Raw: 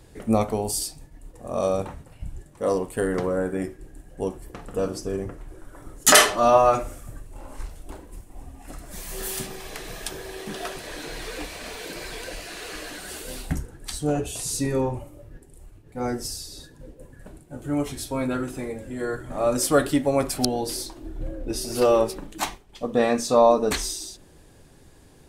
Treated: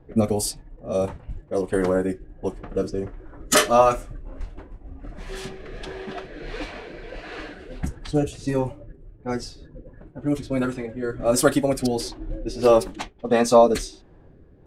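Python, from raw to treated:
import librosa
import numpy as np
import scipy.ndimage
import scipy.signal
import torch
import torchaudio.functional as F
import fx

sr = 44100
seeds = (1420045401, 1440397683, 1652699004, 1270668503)

y = fx.rotary(x, sr, hz=0.85)
y = fx.env_lowpass(y, sr, base_hz=1100.0, full_db=-23.5)
y = fx.stretch_vocoder(y, sr, factor=0.58)
y = y * librosa.db_to_amplitude(4.5)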